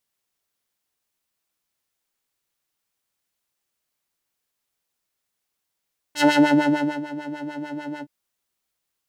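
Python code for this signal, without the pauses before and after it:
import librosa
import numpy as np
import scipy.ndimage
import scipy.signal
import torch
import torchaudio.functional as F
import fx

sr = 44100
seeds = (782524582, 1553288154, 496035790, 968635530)

y = fx.sub_patch_wobble(sr, seeds[0], note=62, wave='square', wave2='square', interval_st=12, level2_db=-9.0, sub_db=-12.0, noise_db=-17.0, kind='bandpass', cutoff_hz=380.0, q=0.98, env_oct=2.5, env_decay_s=0.37, env_sustain_pct=25, attack_ms=58.0, decay_s=0.82, sustain_db=-18.5, release_s=0.06, note_s=1.86, lfo_hz=6.7, wobble_oct=1.6)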